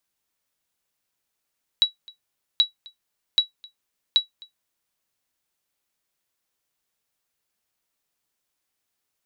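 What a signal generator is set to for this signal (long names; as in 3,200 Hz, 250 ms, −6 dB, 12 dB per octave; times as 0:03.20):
ping with an echo 3,900 Hz, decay 0.13 s, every 0.78 s, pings 4, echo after 0.26 s, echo −25.5 dB −8.5 dBFS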